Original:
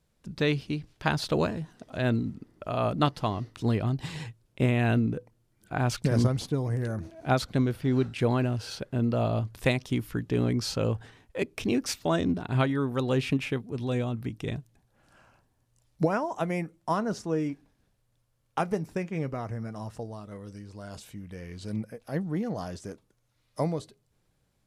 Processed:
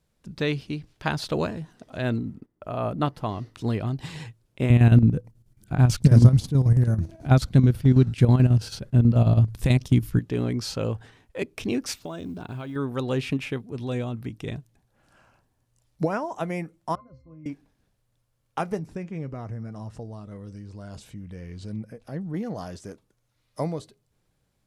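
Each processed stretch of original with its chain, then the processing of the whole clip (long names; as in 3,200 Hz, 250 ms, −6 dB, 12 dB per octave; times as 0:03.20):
0:02.18–0:03.29: noise gate −49 dBFS, range −14 dB + parametric band 4,900 Hz −8 dB 2.2 octaves
0:04.70–0:10.19: bass and treble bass +14 dB, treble +5 dB + square-wave tremolo 9.2 Hz, depth 60%, duty 65%
0:12.00–0:12.76: notch filter 1,900 Hz, Q 7.8 + downward compressor 10 to 1, threshold −30 dBFS + log-companded quantiser 8 bits
0:16.95–0:17.46: low shelf with overshoot 130 Hz +12 dB, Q 1.5 + resonances in every octave C, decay 0.26 s
0:18.79–0:22.34: low-pass filter 10,000 Hz + low-shelf EQ 320 Hz +7.5 dB + downward compressor 1.5 to 1, threshold −40 dBFS
whole clip: no processing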